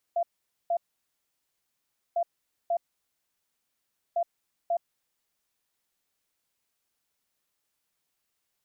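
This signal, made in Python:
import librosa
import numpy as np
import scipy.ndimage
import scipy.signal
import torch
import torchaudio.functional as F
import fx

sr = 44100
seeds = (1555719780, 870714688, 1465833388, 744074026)

y = fx.beep_pattern(sr, wave='sine', hz=685.0, on_s=0.07, off_s=0.47, beeps=2, pause_s=1.39, groups=3, level_db=-23.0)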